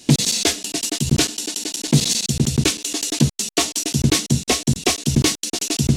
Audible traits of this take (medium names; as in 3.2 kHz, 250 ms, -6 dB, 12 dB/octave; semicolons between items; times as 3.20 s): noise floor -50 dBFS; spectral tilt -3.5 dB/octave